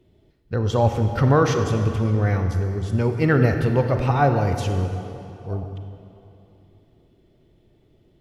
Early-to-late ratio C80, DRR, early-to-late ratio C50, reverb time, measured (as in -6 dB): 7.0 dB, 5.5 dB, 6.0 dB, 2.8 s